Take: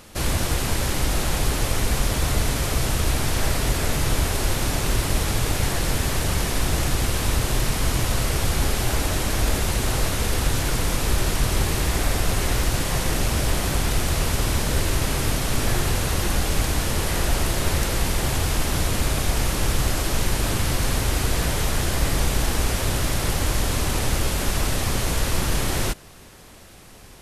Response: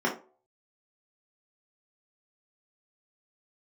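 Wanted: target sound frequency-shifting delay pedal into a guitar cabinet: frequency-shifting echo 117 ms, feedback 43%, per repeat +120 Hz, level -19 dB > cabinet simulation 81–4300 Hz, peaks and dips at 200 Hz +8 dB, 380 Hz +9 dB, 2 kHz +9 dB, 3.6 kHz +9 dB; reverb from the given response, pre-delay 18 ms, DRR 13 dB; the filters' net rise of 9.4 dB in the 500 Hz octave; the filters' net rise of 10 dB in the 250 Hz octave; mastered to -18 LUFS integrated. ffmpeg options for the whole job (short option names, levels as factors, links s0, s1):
-filter_complex "[0:a]equalizer=f=250:t=o:g=6,equalizer=f=500:t=o:g=4,asplit=2[s0][s1];[1:a]atrim=start_sample=2205,adelay=18[s2];[s1][s2]afir=irnorm=-1:irlink=0,volume=0.0562[s3];[s0][s3]amix=inputs=2:normalize=0,asplit=4[s4][s5][s6][s7];[s5]adelay=117,afreqshift=120,volume=0.112[s8];[s6]adelay=234,afreqshift=240,volume=0.0484[s9];[s7]adelay=351,afreqshift=360,volume=0.0207[s10];[s4][s8][s9][s10]amix=inputs=4:normalize=0,highpass=81,equalizer=f=200:t=q:w=4:g=8,equalizer=f=380:t=q:w=4:g=9,equalizer=f=2000:t=q:w=4:g=9,equalizer=f=3600:t=q:w=4:g=9,lowpass=f=4300:w=0.5412,lowpass=f=4300:w=1.3066,volume=1.19"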